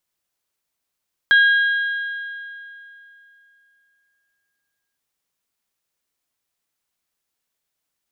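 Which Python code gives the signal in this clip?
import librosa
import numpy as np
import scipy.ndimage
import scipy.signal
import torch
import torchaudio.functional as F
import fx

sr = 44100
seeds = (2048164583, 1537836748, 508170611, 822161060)

y = fx.strike_metal(sr, length_s=3.66, level_db=-9, body='bell', hz=1630.0, decay_s=2.97, tilt_db=11.5, modes=3)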